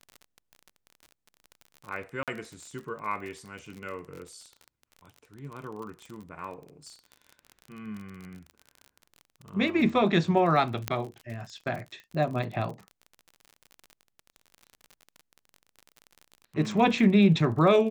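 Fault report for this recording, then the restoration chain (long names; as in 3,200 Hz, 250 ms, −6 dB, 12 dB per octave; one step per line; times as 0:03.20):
surface crackle 39 per second −36 dBFS
0:02.23–0:02.28: drop-out 47 ms
0:10.88: click −11 dBFS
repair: click removal
repair the gap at 0:02.23, 47 ms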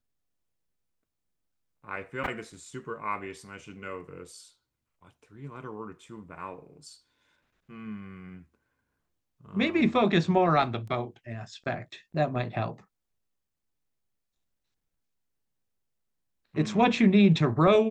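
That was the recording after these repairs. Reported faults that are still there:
0:10.88: click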